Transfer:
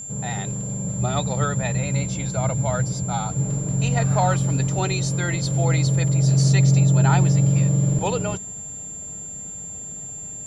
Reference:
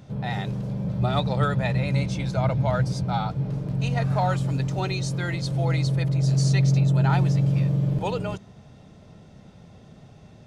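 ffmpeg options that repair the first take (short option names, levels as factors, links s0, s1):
-af "bandreject=f=7300:w=30,asetnsamples=n=441:p=0,asendcmd='3.31 volume volume -3.5dB',volume=1"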